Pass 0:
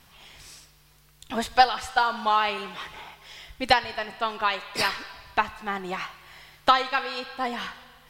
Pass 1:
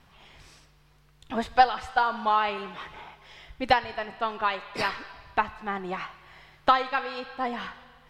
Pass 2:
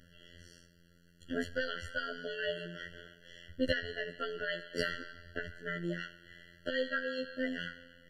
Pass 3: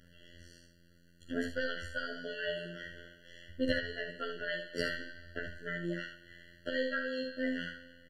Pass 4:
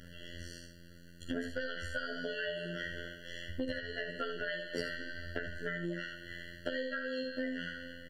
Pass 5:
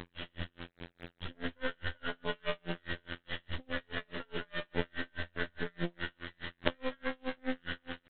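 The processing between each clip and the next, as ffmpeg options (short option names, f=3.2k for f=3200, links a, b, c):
-af "lowpass=f=1.9k:p=1"
-af "alimiter=limit=-17dB:level=0:latency=1:release=50,afftfilt=real='hypot(re,im)*cos(PI*b)':imag='0':win_size=2048:overlap=0.75,afftfilt=real='re*eq(mod(floor(b*sr/1024/680),2),0)':imag='im*eq(mod(floor(b*sr/1024/680),2),0)':win_size=1024:overlap=0.75,volume=2dB"
-filter_complex "[0:a]acontrast=29,asplit=2[a][b];[b]aecho=0:1:46|73:0.376|0.422[c];[a][c]amix=inputs=2:normalize=0,volume=-6.5dB"
-af "acompressor=threshold=-43dB:ratio=8,volume=9dB"
-af "aresample=8000,acrusher=bits=5:dc=4:mix=0:aa=0.000001,aresample=44100,aeval=exprs='val(0)*pow(10,-39*(0.5-0.5*cos(2*PI*4.8*n/s))/20)':c=same,volume=9.5dB"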